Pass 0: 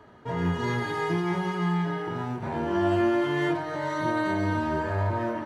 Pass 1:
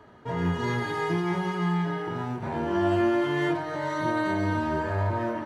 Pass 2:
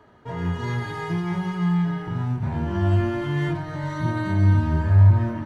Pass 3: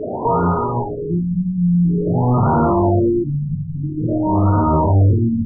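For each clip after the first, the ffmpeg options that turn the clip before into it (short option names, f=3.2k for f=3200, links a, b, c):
-af anull
-af "asubboost=boost=12:cutoff=140,volume=-1.5dB"
-filter_complex "[0:a]aexciter=amount=13:drive=4.6:freq=4k,asplit=2[a][b];[b]highpass=f=720:p=1,volume=48dB,asoftclip=type=tanh:threshold=-6dB[c];[a][c]amix=inputs=2:normalize=0,lowpass=f=1.6k:p=1,volume=-6dB,afftfilt=real='re*lt(b*sr/1024,220*pow(1500/220,0.5+0.5*sin(2*PI*0.49*pts/sr)))':imag='im*lt(b*sr/1024,220*pow(1500/220,0.5+0.5*sin(2*PI*0.49*pts/sr)))':win_size=1024:overlap=0.75"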